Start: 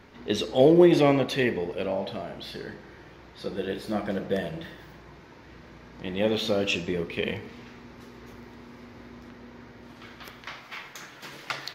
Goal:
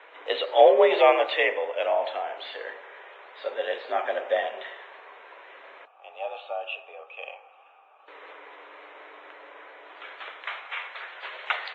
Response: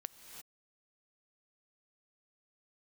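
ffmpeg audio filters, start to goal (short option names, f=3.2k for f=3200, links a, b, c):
-filter_complex "[0:a]asettb=1/sr,asplit=3[a][b][c];[a]atrim=end=5.854[d];[b]atrim=start=5.85:end=8.08,asetpts=PTS-STARTPTS,afade=t=in:d=0.004:c=qsin,afade=t=out:st=2.226:d=0.004:c=qsin,asplit=3[e][f][g];[e]bandpass=f=730:t=q:w=8,volume=0dB[h];[f]bandpass=f=1.09k:t=q:w=8,volume=-6dB[i];[g]bandpass=f=2.44k:t=q:w=8,volume=-9dB[j];[h][i][j]amix=inputs=3:normalize=0[k];[c]atrim=start=8.076[l];[d][k]acrossfade=d=0.004:c1=hsin:c2=qsin[m];[m][l]acrossfade=d=0.004:c1=qsin:c2=hsin,highpass=f=470:t=q:w=0.5412,highpass=f=470:t=q:w=1.307,lowpass=f=3.3k:t=q:w=0.5176,lowpass=f=3.3k:t=q:w=0.7071,lowpass=f=3.3k:t=q:w=1.932,afreqshift=60,volume=6dB" -ar 16000 -c:a wmav2 -b:a 32k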